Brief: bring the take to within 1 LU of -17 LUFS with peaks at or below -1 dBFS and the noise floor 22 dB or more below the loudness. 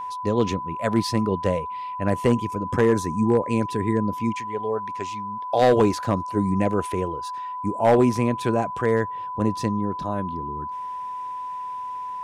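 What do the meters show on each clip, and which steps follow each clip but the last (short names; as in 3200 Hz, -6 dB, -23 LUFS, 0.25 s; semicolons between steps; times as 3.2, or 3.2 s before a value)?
clipped 0.3%; flat tops at -10.5 dBFS; steady tone 1000 Hz; tone level -29 dBFS; loudness -24.0 LUFS; peak -10.5 dBFS; loudness target -17.0 LUFS
-> clip repair -10.5 dBFS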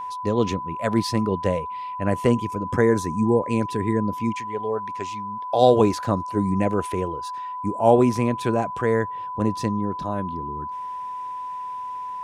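clipped 0.0%; steady tone 1000 Hz; tone level -29 dBFS
-> notch 1000 Hz, Q 30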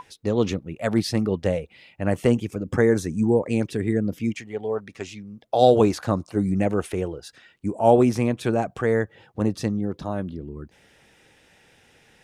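steady tone none; loudness -23.5 LUFS; peak -3.0 dBFS; loudness target -17.0 LUFS
-> gain +6.5 dB; limiter -1 dBFS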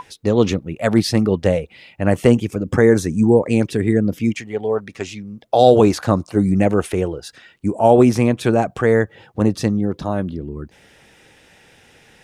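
loudness -17.5 LUFS; peak -1.0 dBFS; noise floor -52 dBFS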